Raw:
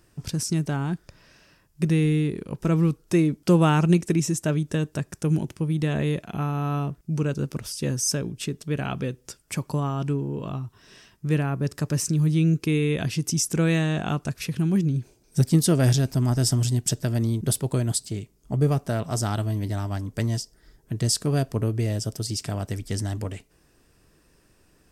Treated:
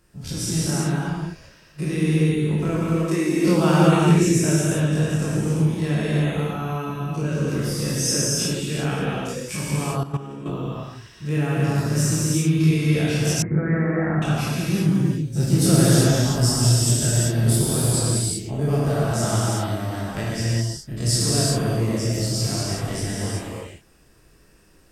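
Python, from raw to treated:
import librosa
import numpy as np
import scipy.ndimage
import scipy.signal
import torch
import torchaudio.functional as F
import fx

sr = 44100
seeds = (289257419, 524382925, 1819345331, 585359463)

y = fx.spec_dilate(x, sr, span_ms=60)
y = fx.highpass(y, sr, hz=fx.line((2.82, 390.0), (3.34, 150.0)), slope=24, at=(2.82, 3.34), fade=0.02)
y = fx.rev_gated(y, sr, seeds[0], gate_ms=410, shape='flat', drr_db=-7.0)
y = fx.level_steps(y, sr, step_db=14, at=(10.03, 10.46))
y = fx.cheby1_lowpass(y, sr, hz=2200.0, order=8, at=(13.42, 14.22))
y = y * librosa.db_to_amplitude(-6.5)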